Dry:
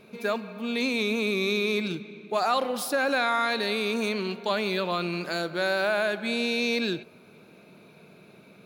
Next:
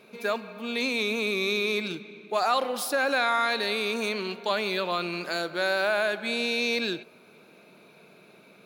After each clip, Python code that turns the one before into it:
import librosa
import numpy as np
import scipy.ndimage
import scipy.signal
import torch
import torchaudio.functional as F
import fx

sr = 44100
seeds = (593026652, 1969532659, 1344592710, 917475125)

y = fx.highpass(x, sr, hz=350.0, slope=6)
y = y * librosa.db_to_amplitude(1.0)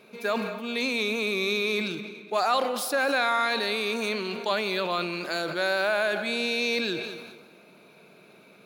y = fx.echo_feedback(x, sr, ms=210, feedback_pct=44, wet_db=-19.0)
y = fx.sustainer(y, sr, db_per_s=44.0)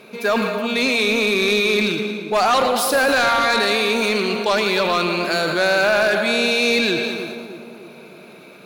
y = fx.echo_split(x, sr, split_hz=1000.0, low_ms=305, high_ms=113, feedback_pct=52, wet_db=-9.0)
y = fx.fold_sine(y, sr, drive_db=6, ceiling_db=-11.5)